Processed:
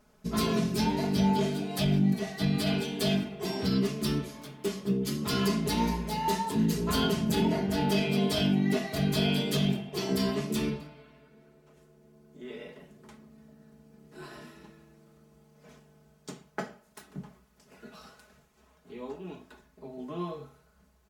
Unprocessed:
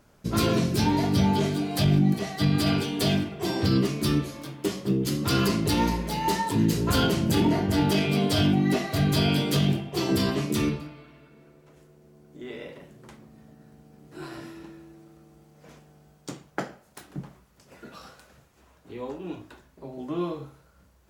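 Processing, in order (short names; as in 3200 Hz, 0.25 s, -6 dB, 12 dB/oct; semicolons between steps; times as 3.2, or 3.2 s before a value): comb 4.7 ms, depth 75%; gain -6 dB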